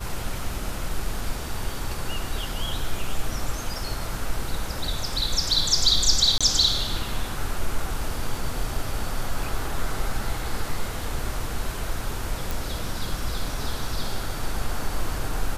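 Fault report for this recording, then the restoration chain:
6.38–6.41 gap 26 ms
12.51 pop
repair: de-click; interpolate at 6.38, 26 ms

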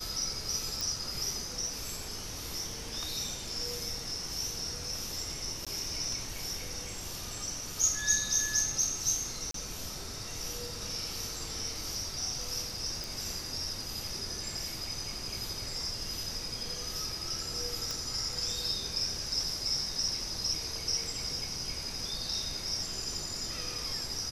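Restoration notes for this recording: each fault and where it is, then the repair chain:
0.81 pop
5.65–5.67 gap 16 ms
9.51–9.54 gap 33 ms
13.04 pop
17.91 pop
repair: de-click; interpolate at 5.65, 16 ms; interpolate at 9.51, 33 ms

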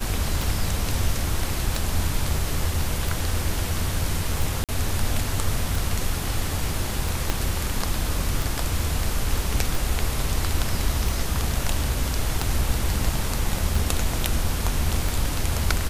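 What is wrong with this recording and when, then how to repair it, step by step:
tick 45 rpm
4.64–4.69 gap 47 ms
7.3 pop -8 dBFS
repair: de-click; interpolate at 4.64, 47 ms

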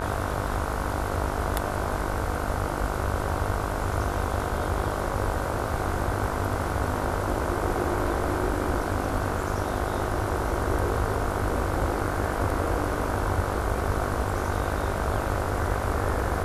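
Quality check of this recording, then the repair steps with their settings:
buzz 50 Hz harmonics 31 -32 dBFS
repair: de-hum 50 Hz, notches 31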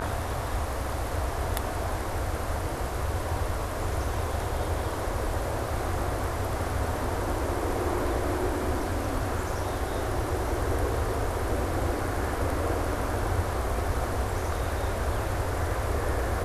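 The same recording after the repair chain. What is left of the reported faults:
none

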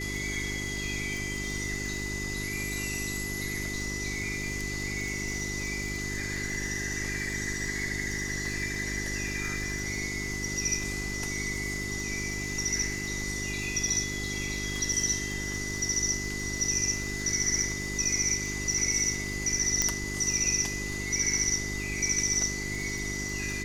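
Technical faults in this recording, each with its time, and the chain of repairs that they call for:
crackle 57/s -35 dBFS
hum 50 Hz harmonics 8 -37 dBFS
tone 2000 Hz -35 dBFS
19.82 pop -9 dBFS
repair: de-click; de-hum 50 Hz, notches 8; notch 2000 Hz, Q 30

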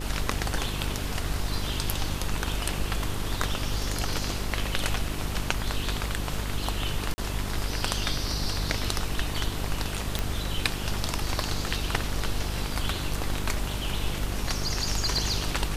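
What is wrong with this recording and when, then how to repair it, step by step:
buzz 50 Hz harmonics 9 -33 dBFS
7.14–7.18 gap 40 ms
10.19 pop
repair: de-click; de-hum 50 Hz, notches 9; interpolate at 7.14, 40 ms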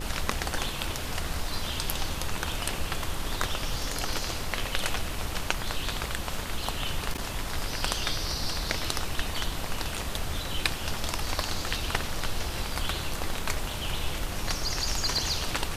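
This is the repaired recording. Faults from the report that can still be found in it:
none

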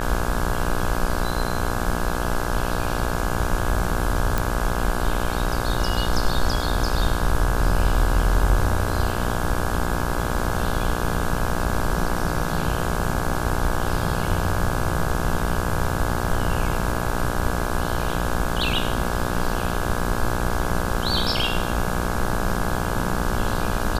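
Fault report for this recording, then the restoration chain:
buzz 60 Hz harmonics 28 -27 dBFS
4.38 pop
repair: de-click; de-hum 60 Hz, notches 28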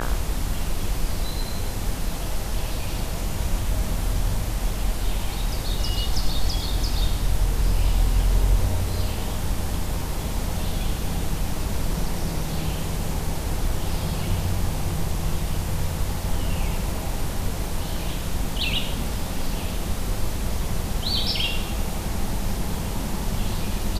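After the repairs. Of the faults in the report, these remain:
none

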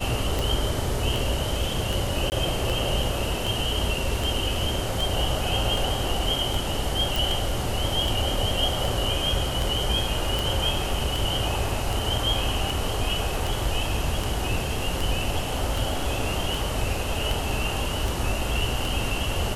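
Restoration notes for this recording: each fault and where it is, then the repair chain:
tick 78 rpm
2.3–2.32 gap 19 ms
7.16 pop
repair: de-click; interpolate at 2.3, 19 ms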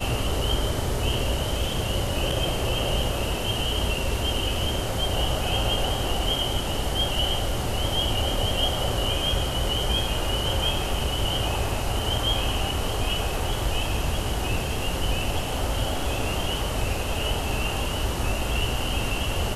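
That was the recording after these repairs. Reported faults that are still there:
none

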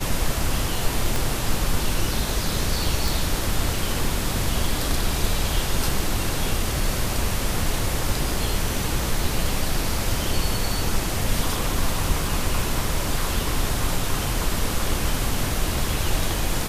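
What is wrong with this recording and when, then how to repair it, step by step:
1.16 pop
3.08 pop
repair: de-click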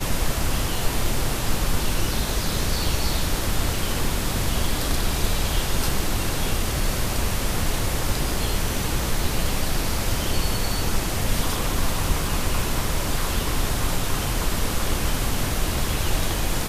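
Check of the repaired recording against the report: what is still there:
1.16 pop

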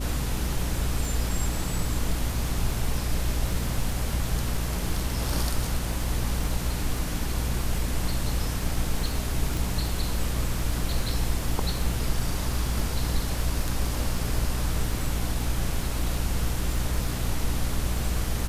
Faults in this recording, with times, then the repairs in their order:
crackle 30/s -32 dBFS
hum 60 Hz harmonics 5 -30 dBFS
9.57 pop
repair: de-click; de-hum 60 Hz, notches 5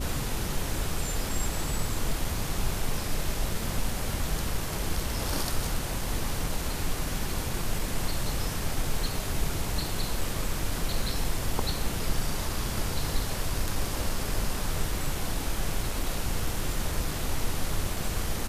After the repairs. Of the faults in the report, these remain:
none

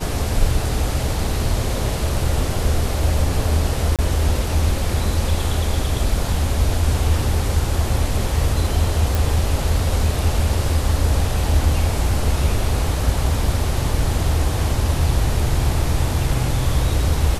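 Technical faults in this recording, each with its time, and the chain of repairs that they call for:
3.96–3.99 gap 27 ms
9.15 pop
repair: de-click; interpolate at 3.96, 27 ms

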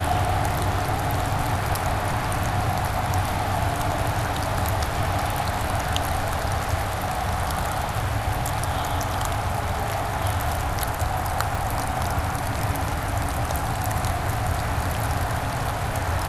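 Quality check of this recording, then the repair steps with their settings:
11.55 pop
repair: de-click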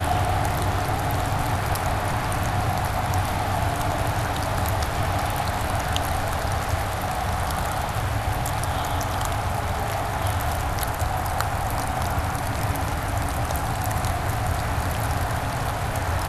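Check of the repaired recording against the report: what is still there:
11.55 pop

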